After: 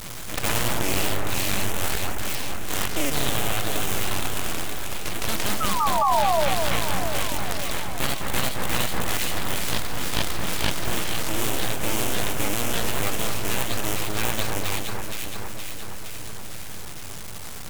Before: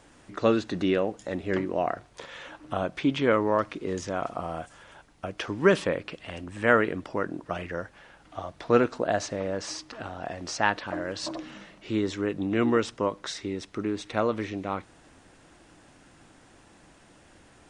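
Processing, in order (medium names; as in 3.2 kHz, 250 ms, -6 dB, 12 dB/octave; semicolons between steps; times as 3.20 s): cycle switcher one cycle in 2, muted; high-pass 210 Hz 12 dB/octave; treble shelf 8.2 kHz +9 dB; static phaser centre 1.7 kHz, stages 4; spectral gate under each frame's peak -10 dB weak; full-wave rectifier; painted sound fall, 6.01–6.49 s, 540–1200 Hz -38 dBFS; echo whose repeats swap between lows and highs 234 ms, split 1.9 kHz, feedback 71%, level -7 dB; ever faster or slower copies 124 ms, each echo +1 st, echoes 2; loudness maximiser +22 dB; level flattener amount 50%; trim -6.5 dB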